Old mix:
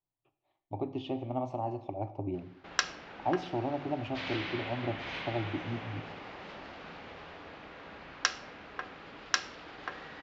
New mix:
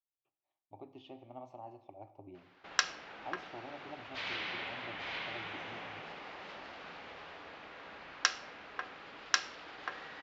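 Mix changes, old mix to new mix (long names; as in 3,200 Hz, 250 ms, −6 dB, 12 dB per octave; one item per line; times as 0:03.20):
speech −11.0 dB
master: add low-shelf EQ 350 Hz −10 dB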